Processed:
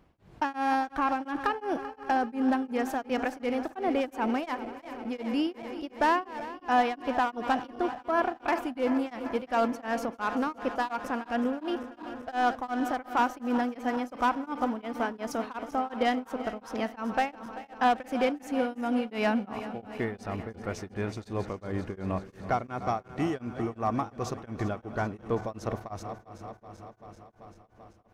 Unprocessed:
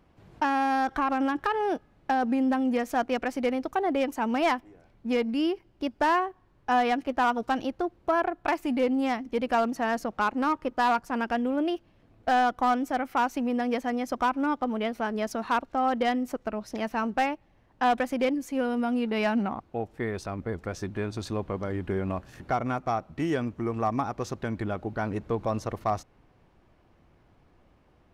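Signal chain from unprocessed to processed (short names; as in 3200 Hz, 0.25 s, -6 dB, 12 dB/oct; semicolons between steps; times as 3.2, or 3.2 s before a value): regenerating reverse delay 0.194 s, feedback 84%, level -14 dB; 1.5–2.26 notch 3700 Hz, Q 8.9; beating tremolo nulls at 2.8 Hz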